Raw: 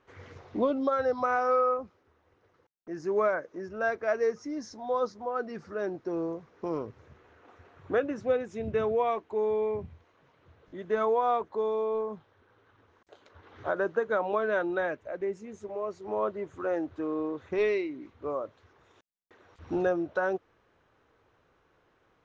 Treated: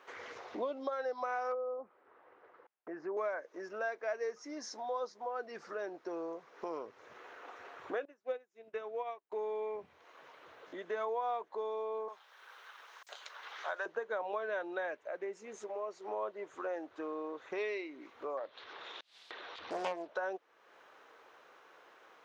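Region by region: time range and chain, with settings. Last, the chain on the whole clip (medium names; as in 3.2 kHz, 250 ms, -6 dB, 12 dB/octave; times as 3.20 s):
1.52–3.17 s: low-pass 1.8 kHz + low-pass that closes with the level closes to 590 Hz, closed at -23.5 dBFS
8.05–9.32 s: peaking EQ 73 Hz -10 dB 1.1 oct + upward expansion 2.5:1, over -43 dBFS
12.08–13.86 s: high-pass 730 Hz + treble shelf 2.3 kHz +10 dB
18.37–20.08 s: upward compressor, threshold -44 dBFS + resonant low-pass 3.8 kHz, resonance Q 3.1 + loudspeaker Doppler distortion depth 0.99 ms
whole clip: high-pass 540 Hz 12 dB/octave; dynamic bell 1.3 kHz, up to -6 dB, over -48 dBFS, Q 4.4; compression 2:1, threshold -58 dBFS; trim +10 dB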